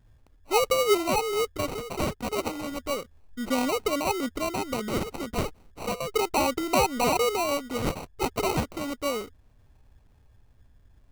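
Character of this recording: phasing stages 2, 0.33 Hz, lowest notch 680–2400 Hz; aliases and images of a low sample rate 1.7 kHz, jitter 0%

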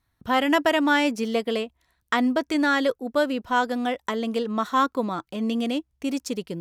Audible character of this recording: noise floor -74 dBFS; spectral tilt -2.0 dB/octave

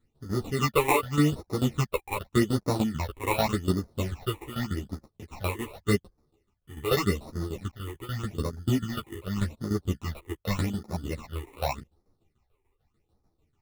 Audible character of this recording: aliases and images of a low sample rate 1.6 kHz, jitter 0%; phasing stages 8, 0.85 Hz, lowest notch 180–2900 Hz; tremolo saw down 6.8 Hz, depth 80%; a shimmering, thickened sound

